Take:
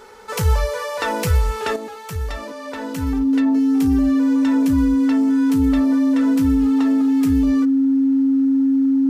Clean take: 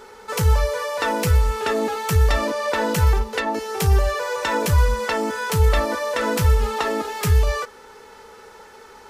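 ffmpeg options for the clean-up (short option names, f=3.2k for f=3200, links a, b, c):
-af "bandreject=f=270:w=30,asetnsamples=n=441:p=0,asendcmd='1.76 volume volume 9dB',volume=0dB"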